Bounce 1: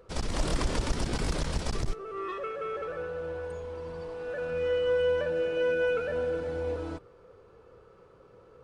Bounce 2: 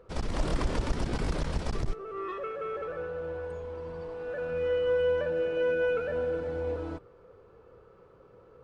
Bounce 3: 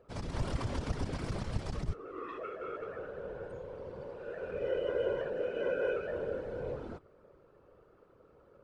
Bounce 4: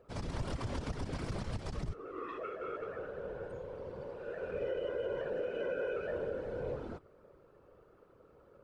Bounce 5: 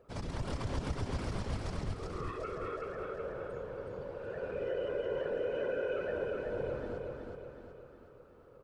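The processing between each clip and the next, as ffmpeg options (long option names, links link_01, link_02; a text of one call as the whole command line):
ffmpeg -i in.wav -af "highshelf=frequency=3700:gain=-9.5" out.wav
ffmpeg -i in.wav -af "afftfilt=real='hypot(re,im)*cos(2*PI*random(0))':imag='hypot(re,im)*sin(2*PI*random(1))':win_size=512:overlap=0.75" out.wav
ffmpeg -i in.wav -af "alimiter=level_in=4dB:limit=-24dB:level=0:latency=1:release=110,volume=-4dB" out.wav
ffmpeg -i in.wav -af "aecho=1:1:371|742|1113|1484|1855|2226:0.631|0.315|0.158|0.0789|0.0394|0.0197" out.wav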